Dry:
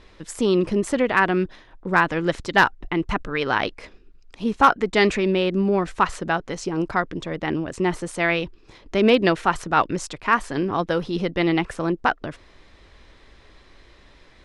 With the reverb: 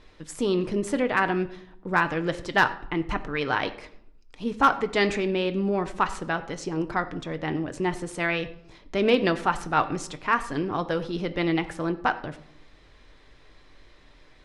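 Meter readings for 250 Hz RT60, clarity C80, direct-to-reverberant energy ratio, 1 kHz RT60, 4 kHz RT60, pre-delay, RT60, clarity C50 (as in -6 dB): 0.95 s, 16.5 dB, 8.5 dB, 0.65 s, 0.45 s, 7 ms, 0.70 s, 14.5 dB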